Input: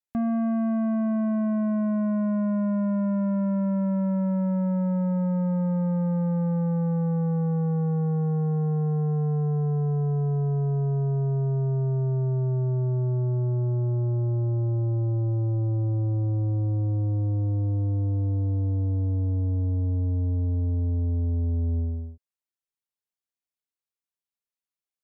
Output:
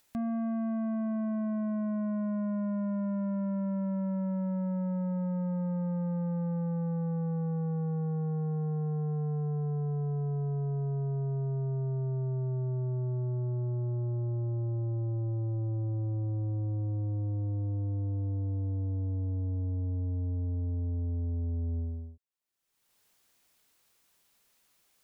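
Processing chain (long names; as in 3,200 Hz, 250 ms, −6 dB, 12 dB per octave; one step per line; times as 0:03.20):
upward compression, threshold −39 dBFS
level −7 dB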